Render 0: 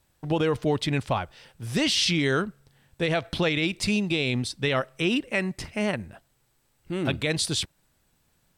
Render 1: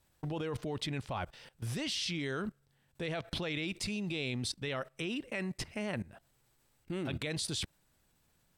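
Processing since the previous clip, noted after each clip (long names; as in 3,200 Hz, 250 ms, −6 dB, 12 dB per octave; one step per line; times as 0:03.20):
output level in coarse steps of 18 dB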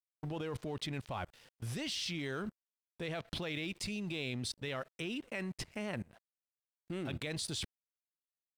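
dead-zone distortion −57 dBFS
level −2 dB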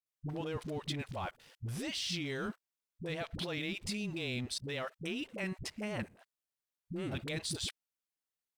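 all-pass dispersion highs, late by 63 ms, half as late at 350 Hz
level +1 dB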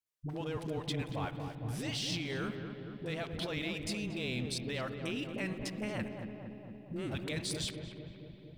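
feedback echo with a low-pass in the loop 231 ms, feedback 75%, low-pass 1,200 Hz, level −6 dB
spring reverb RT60 3.5 s, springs 56 ms, chirp 65 ms, DRR 12 dB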